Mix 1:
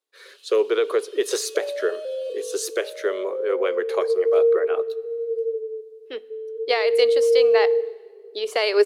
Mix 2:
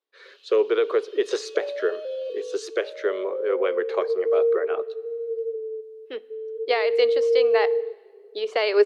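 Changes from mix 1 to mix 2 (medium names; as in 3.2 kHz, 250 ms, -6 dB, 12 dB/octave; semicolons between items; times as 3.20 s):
speech: add distance through air 150 m; first sound: add boxcar filter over 5 samples; second sound: send off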